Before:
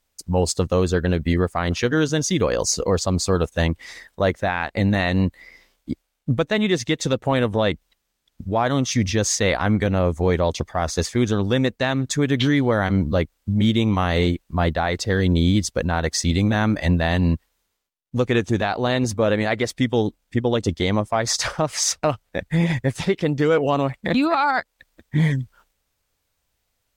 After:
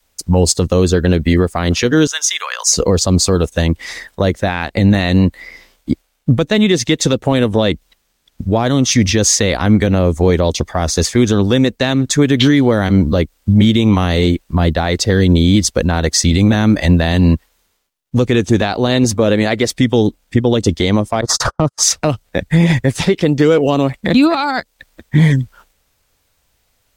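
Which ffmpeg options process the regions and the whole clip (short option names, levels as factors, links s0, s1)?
-filter_complex "[0:a]asettb=1/sr,asplit=3[s0][s1][s2];[s0]atrim=end=2.074[s3];[s1]atrim=start=2.07:end=2.73,asetpts=PTS-STARTPTS,afade=t=in:d=0.004:c=qsin,afade=t=out:st=0.656:d=0.004:c=qsin,highpass=f=1100:w=0.5412,highpass=f=1100:w=1.3066,bandreject=f=4500:w=5.5[s4];[s2]atrim=start=2.726[s5];[s3][s4]acrossfade=d=0.004:c1=hsin:c2=qsin[s6];[s6][s5]acrossfade=d=0.004:c1=qsin:c2=hsin,asettb=1/sr,asplit=3[s7][s8][s9];[s7]atrim=end=21.214[s10];[s8]atrim=start=21.21:end=21.83,asetpts=PTS-STARTPTS,afade=t=in:d=0.004:c=qsin,afade=t=out:st=0.616:d=0.004:c=qsin,agate=range=0.00398:threshold=0.0562:ratio=16:release=100:detection=peak,highshelf=f=1700:t=q:w=3:g=-9,acontrast=68[s11];[s9]atrim=start=21.826[s12];[s10][s11]acrossfade=d=0.004:c1=hsin:c2=qsin[s13];[s13][s12]acrossfade=d=0.004:c1=qsin:c2=hsin,adynamicequalizer=threshold=0.02:dfrequency=120:dqfactor=1.1:tfrequency=120:tqfactor=1.1:attack=5:release=100:ratio=0.375:range=2.5:mode=cutabove:tftype=bell,acrossover=split=450|3000[s14][s15][s16];[s15]acompressor=threshold=0.0251:ratio=3[s17];[s14][s17][s16]amix=inputs=3:normalize=0,alimiter=level_in=3.98:limit=0.891:release=50:level=0:latency=1,volume=0.891"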